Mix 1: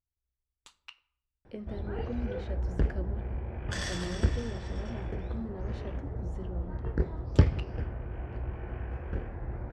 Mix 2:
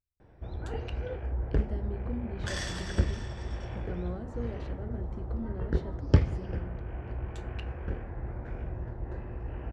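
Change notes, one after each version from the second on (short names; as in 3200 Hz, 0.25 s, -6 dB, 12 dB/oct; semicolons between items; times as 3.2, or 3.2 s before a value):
background: entry -1.25 s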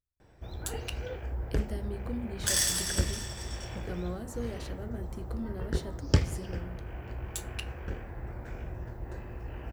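background -3.0 dB; master: remove tape spacing loss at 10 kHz 28 dB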